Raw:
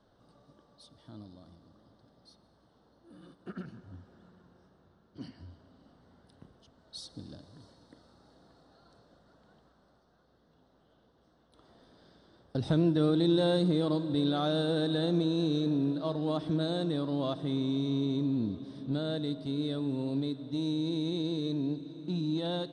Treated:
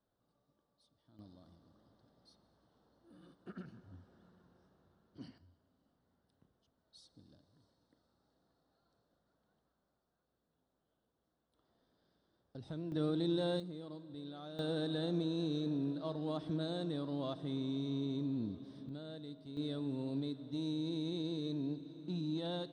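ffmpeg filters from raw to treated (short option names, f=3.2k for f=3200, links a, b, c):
-af "asetnsamples=n=441:p=0,asendcmd='1.19 volume volume -7dB;5.38 volume volume -17dB;12.92 volume volume -8.5dB;13.6 volume volume -19dB;14.59 volume volume -7.5dB;18.89 volume volume -14.5dB;19.57 volume volume -6.5dB',volume=-18dB"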